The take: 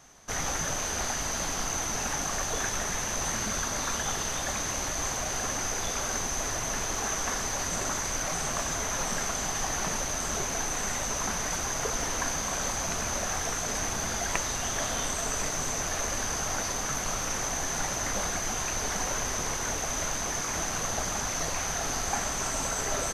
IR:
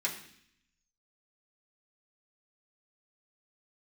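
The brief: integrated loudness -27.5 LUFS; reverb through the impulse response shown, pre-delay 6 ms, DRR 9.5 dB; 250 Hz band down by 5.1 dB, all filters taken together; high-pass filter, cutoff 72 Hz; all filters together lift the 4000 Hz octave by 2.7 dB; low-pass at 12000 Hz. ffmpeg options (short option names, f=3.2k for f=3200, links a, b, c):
-filter_complex "[0:a]highpass=72,lowpass=12k,equalizer=f=250:t=o:g=-7,equalizer=f=4k:t=o:g=3.5,asplit=2[a][b];[1:a]atrim=start_sample=2205,adelay=6[c];[b][c]afir=irnorm=-1:irlink=0,volume=-14.5dB[d];[a][d]amix=inputs=2:normalize=0,volume=0.5dB"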